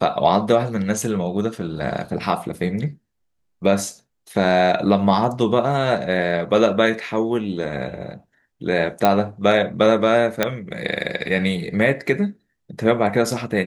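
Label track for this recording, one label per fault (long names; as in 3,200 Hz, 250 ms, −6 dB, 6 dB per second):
9.050000	9.050000	click −4 dBFS
10.430000	10.430000	click −3 dBFS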